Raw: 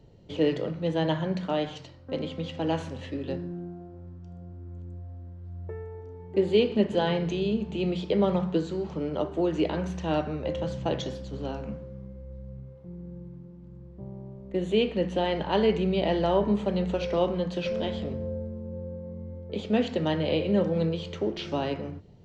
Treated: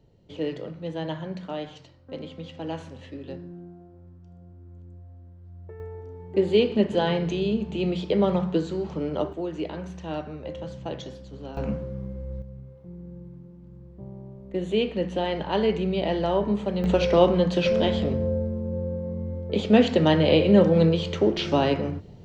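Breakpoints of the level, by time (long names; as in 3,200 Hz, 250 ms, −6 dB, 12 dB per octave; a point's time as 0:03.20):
−5 dB
from 0:05.80 +2 dB
from 0:09.33 −5 dB
from 0:11.57 +7.5 dB
from 0:12.42 0 dB
from 0:16.84 +7.5 dB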